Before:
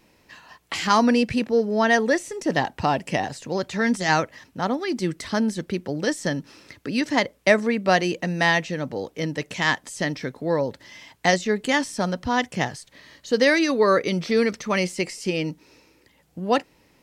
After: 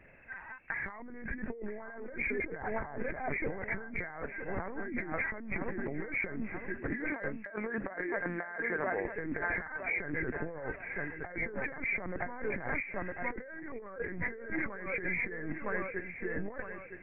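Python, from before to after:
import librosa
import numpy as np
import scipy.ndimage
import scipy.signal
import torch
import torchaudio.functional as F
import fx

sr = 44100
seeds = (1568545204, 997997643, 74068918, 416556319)

y = fx.freq_compress(x, sr, knee_hz=1500.0, ratio=4.0)
y = fx.lpc_vocoder(y, sr, seeds[0], excitation='pitch_kept', order=8)
y = fx.highpass(y, sr, hz=fx.line((6.9, 300.0), (9.04, 840.0)), slope=6, at=(6.9, 9.04), fade=0.02)
y = fx.echo_feedback(y, sr, ms=961, feedback_pct=34, wet_db=-13.0)
y = fx.over_compress(y, sr, threshold_db=-31.0, ratio=-1.0)
y = y * 10.0 ** (-7.0 / 20.0)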